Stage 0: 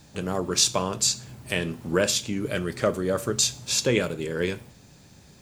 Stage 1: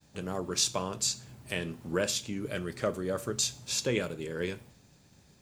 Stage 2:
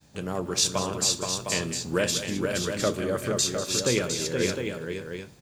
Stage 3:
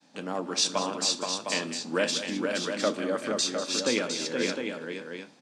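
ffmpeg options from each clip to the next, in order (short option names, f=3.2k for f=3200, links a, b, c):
-af "agate=range=-33dB:threshold=-49dB:ratio=3:detection=peak,volume=-7dB"
-af "aecho=1:1:192|472|707:0.224|0.562|0.447,volume=4dB"
-af "highpass=f=220:w=0.5412,highpass=f=220:w=1.3066,equalizer=f=270:t=q:w=4:g=5,equalizer=f=390:t=q:w=4:g=-8,equalizer=f=820:t=q:w=4:g=3,equalizer=f=7k:t=q:w=4:g=-7,lowpass=f=8.2k:w=0.5412,lowpass=f=8.2k:w=1.3066"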